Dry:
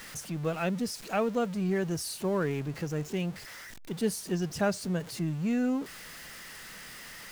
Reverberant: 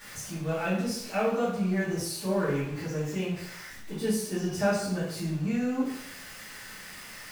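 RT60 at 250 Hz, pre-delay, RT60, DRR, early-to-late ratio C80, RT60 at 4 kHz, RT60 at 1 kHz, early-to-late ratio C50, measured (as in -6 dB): 0.65 s, 3 ms, 0.75 s, -11.0 dB, 5.5 dB, 0.60 s, 0.80 s, 2.0 dB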